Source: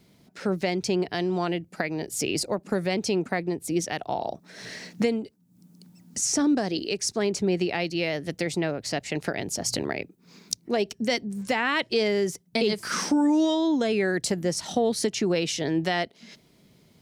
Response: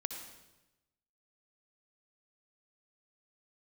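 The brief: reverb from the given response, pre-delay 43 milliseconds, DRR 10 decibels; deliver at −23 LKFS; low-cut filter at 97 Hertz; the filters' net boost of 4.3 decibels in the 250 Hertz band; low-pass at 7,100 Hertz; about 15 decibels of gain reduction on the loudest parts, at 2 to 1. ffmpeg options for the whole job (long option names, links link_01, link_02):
-filter_complex "[0:a]highpass=97,lowpass=7100,equalizer=frequency=250:width_type=o:gain=6,acompressor=threshold=-43dB:ratio=2,asplit=2[link_01][link_02];[1:a]atrim=start_sample=2205,adelay=43[link_03];[link_02][link_03]afir=irnorm=-1:irlink=0,volume=-10dB[link_04];[link_01][link_04]amix=inputs=2:normalize=0,volume=13.5dB"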